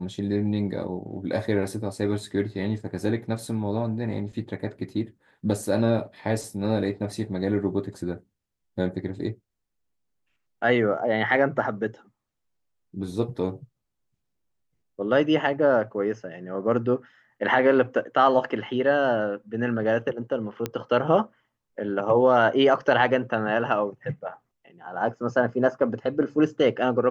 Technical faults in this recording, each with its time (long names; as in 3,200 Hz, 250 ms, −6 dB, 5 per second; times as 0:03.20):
0:20.66: click −13 dBFS